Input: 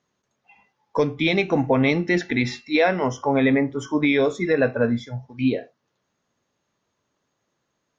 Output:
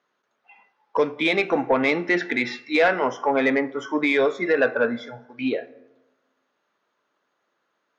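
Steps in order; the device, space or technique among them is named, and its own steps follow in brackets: intercom (BPF 350–3900 Hz; bell 1400 Hz +6 dB 0.5 oct; soft clip -10.5 dBFS, distortion -21 dB); plate-style reverb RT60 1.2 s, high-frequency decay 0.5×, DRR 17.5 dB; gain +2 dB

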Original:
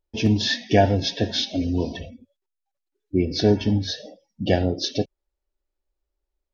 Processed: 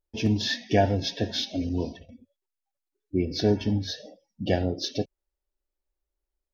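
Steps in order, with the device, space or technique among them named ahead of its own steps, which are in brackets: 1.69–2.09 expander -25 dBFS; exciter from parts (in parallel at -14 dB: HPF 3100 Hz 24 dB/oct + soft clip -32 dBFS, distortion -6 dB); on the sum: gain -4.5 dB

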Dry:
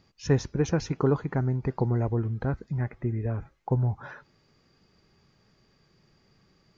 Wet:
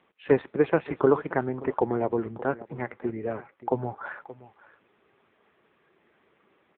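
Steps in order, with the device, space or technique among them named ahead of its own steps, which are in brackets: satellite phone (BPF 380–3300 Hz; echo 0.577 s -17.5 dB; gain +8.5 dB; AMR-NB 5.9 kbps 8000 Hz)

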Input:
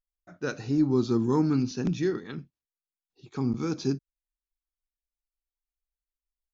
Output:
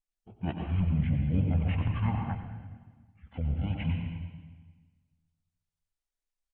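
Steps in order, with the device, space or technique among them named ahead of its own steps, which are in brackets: monster voice (pitch shift -8.5 st; formant shift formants -4.5 st; low shelf 110 Hz +8 dB; echo 91 ms -9 dB; reverb RT60 1.4 s, pre-delay 94 ms, DRR 2 dB); 1.66–2.35 bell 980 Hz +6 dB 1.4 oct; harmonic-percussive split harmonic -8 dB

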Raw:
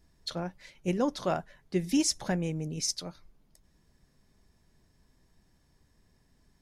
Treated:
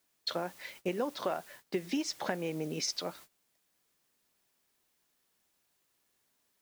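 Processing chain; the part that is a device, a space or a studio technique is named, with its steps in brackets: baby monitor (BPF 340–3800 Hz; compressor 8:1, threshold -38 dBFS, peak gain reduction 13.5 dB; white noise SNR 17 dB; gate -59 dBFS, range -20 dB); gain +8 dB

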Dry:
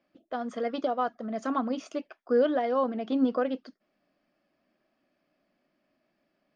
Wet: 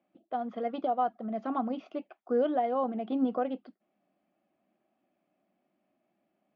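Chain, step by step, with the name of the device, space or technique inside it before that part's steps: guitar cabinet (speaker cabinet 84–3500 Hz, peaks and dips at 85 Hz +6 dB, 200 Hz +7 dB, 350 Hz +5 dB, 760 Hz +9 dB, 1700 Hz -5 dB); gain -5.5 dB

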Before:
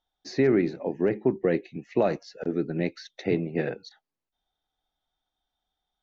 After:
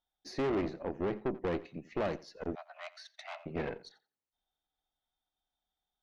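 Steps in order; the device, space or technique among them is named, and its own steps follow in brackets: rockabilly slapback (tube stage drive 25 dB, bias 0.7; tape echo 86 ms, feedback 21%, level -17 dB, low-pass 3600 Hz); 2.55–3.46 Chebyshev high-pass 610 Hz, order 8; gain -3 dB

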